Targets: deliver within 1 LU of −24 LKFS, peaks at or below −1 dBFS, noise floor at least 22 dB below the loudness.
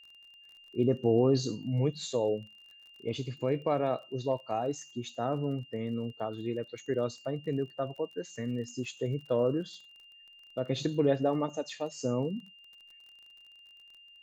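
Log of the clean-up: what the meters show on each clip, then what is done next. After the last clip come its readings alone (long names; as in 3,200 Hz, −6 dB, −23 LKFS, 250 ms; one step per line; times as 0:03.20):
crackle rate 34 per second; interfering tone 2,800 Hz; level of the tone −53 dBFS; integrated loudness −32.5 LKFS; sample peak −14.5 dBFS; target loudness −24.0 LKFS
→ click removal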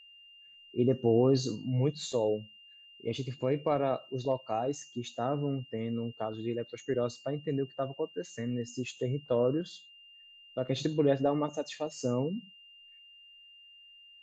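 crackle rate 0 per second; interfering tone 2,800 Hz; level of the tone −53 dBFS
→ notch filter 2,800 Hz, Q 30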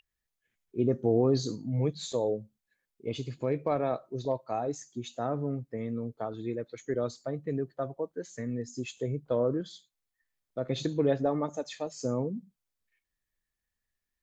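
interfering tone none found; integrated loudness −32.5 LKFS; sample peak −14.5 dBFS; target loudness −24.0 LKFS
→ level +8.5 dB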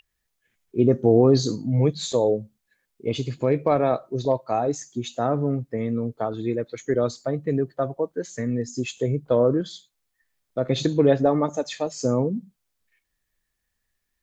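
integrated loudness −24.0 LKFS; sample peak −6.0 dBFS; background noise floor −78 dBFS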